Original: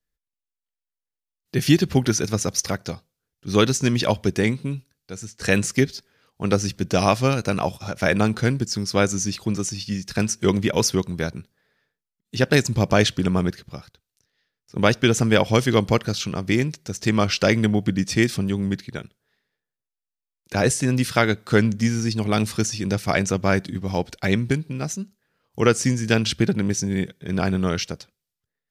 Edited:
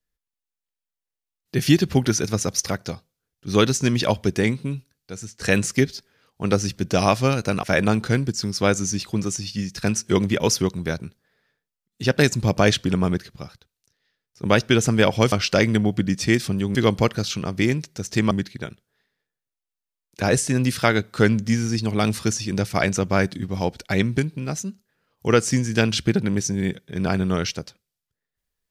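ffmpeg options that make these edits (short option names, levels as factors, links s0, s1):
-filter_complex "[0:a]asplit=5[s0][s1][s2][s3][s4];[s0]atrim=end=7.632[s5];[s1]atrim=start=7.958:end=15.652[s6];[s2]atrim=start=17.208:end=18.642[s7];[s3]atrim=start=15.648:end=17.212[s8];[s4]atrim=start=18.638[s9];[s5][s6]acrossfade=d=0.004:c1=hsin:c2=hsin[s10];[s10][s7]acrossfade=d=0.004:c1=hsin:c2=hsin[s11];[s11][s8]acrossfade=d=0.004:c1=hsin:c2=hsin[s12];[s12][s9]acrossfade=d=0.004:c1=hsin:c2=hsin"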